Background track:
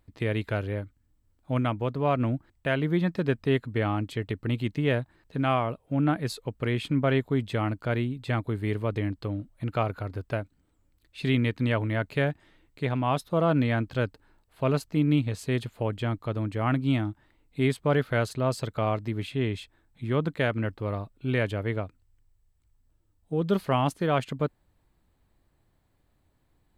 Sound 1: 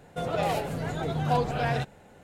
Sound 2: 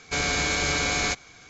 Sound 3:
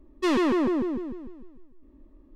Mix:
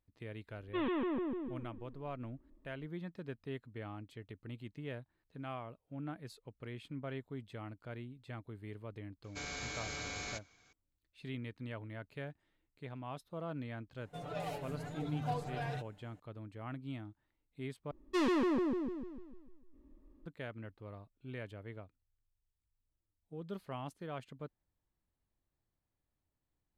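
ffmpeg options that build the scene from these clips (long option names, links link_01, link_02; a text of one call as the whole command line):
ffmpeg -i bed.wav -i cue0.wav -i cue1.wav -i cue2.wav -filter_complex "[3:a]asplit=2[link_01][link_02];[0:a]volume=-18.5dB[link_03];[link_01]aresample=8000,aresample=44100[link_04];[1:a]aecho=1:1:6.8:0.76[link_05];[link_02]bandreject=frequency=670:width=13[link_06];[link_03]asplit=2[link_07][link_08];[link_07]atrim=end=17.914[link_09];[link_06]atrim=end=2.35,asetpts=PTS-STARTPTS,volume=-8dB[link_10];[link_08]atrim=start=20.256[link_11];[link_04]atrim=end=2.35,asetpts=PTS-STARTPTS,volume=-12dB,afade=type=in:duration=0.004:curve=hsin,afade=type=out:start_time=2.346:duration=0.004:curve=hsin,adelay=510[link_12];[2:a]atrim=end=1.49,asetpts=PTS-STARTPTS,volume=-17.5dB,afade=type=in:duration=0.004:curve=hsin,afade=type=out:start_time=1.486:duration=0.004:curve=hsin,adelay=9240[link_13];[link_05]atrim=end=2.23,asetpts=PTS-STARTPTS,volume=-15.5dB,afade=type=in:duration=0.004:curve=hsin,afade=type=out:start_time=2.226:duration=0.004:curve=hsin,adelay=13970[link_14];[link_09][link_10]acrossfade=duration=0.004:curve1=hsin:curve2=hsin[link_15];[link_15][link_11]acrossfade=duration=0.004:curve1=hsin:curve2=hsin[link_16];[link_16][link_12][link_13][link_14]amix=inputs=4:normalize=0" out.wav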